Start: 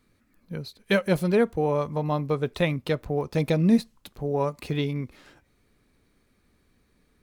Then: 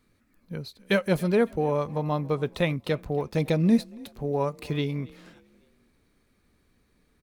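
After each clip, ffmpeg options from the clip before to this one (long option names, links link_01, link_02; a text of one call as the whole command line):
ffmpeg -i in.wav -filter_complex "[0:a]asplit=4[link_01][link_02][link_03][link_04];[link_02]adelay=279,afreqshift=32,volume=-23dB[link_05];[link_03]adelay=558,afreqshift=64,volume=-30.7dB[link_06];[link_04]adelay=837,afreqshift=96,volume=-38.5dB[link_07];[link_01][link_05][link_06][link_07]amix=inputs=4:normalize=0,volume=-1dB" out.wav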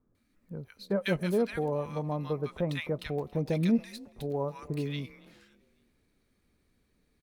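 ffmpeg -i in.wav -filter_complex "[0:a]acrossover=split=1200[link_01][link_02];[link_02]adelay=150[link_03];[link_01][link_03]amix=inputs=2:normalize=0,volume=-5dB" out.wav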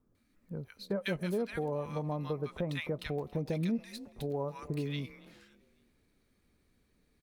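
ffmpeg -i in.wav -af "acompressor=threshold=-32dB:ratio=2.5" out.wav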